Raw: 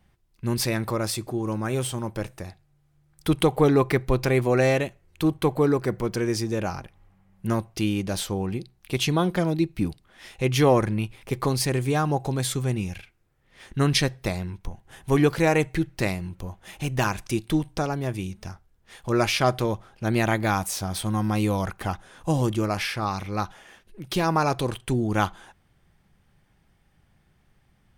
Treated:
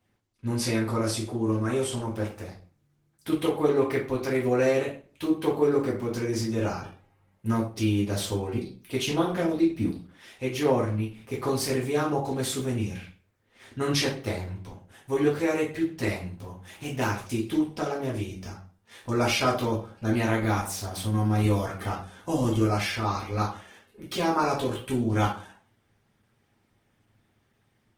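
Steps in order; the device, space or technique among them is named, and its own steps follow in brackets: far-field microphone of a smart speaker (reverberation RT60 0.40 s, pre-delay 3 ms, DRR -4.5 dB; high-pass 100 Hz 12 dB/octave; level rider gain up to 3 dB; trim -9 dB; Opus 16 kbps 48 kHz)

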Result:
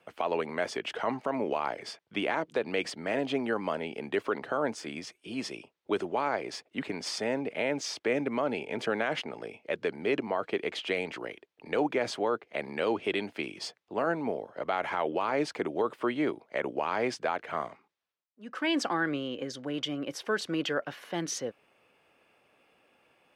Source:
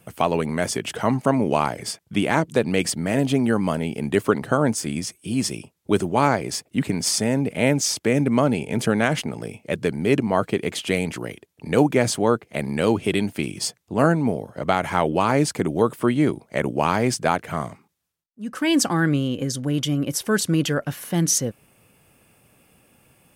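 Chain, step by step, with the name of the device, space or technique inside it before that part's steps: DJ mixer with the lows and highs turned down (three-band isolator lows -19 dB, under 320 Hz, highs -22 dB, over 4.6 kHz; peak limiter -14 dBFS, peak gain reduction 8 dB); trim -4 dB

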